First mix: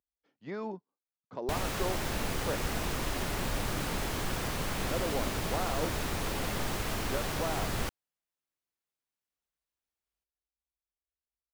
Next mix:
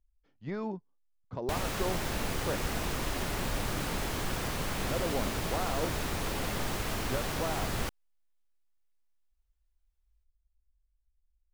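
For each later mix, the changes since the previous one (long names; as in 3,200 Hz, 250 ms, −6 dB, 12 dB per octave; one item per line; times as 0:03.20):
speech: remove high-pass filter 240 Hz 12 dB per octave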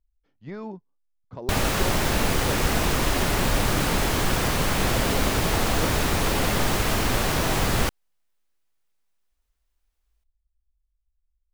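background +10.5 dB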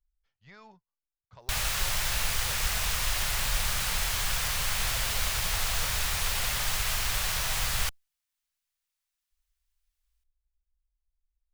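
master: add guitar amp tone stack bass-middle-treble 10-0-10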